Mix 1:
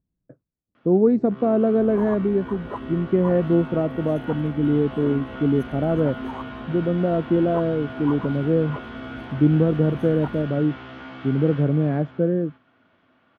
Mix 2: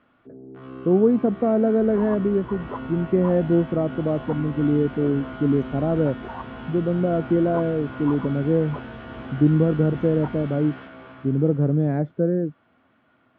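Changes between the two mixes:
first sound: entry -0.75 s; master: add air absorption 180 m

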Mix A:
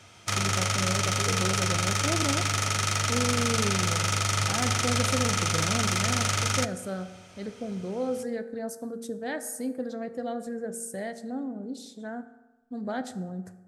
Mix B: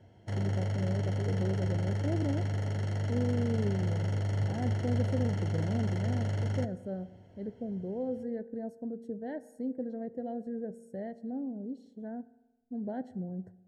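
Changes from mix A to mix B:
speech: send -7.0 dB; master: add running mean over 36 samples

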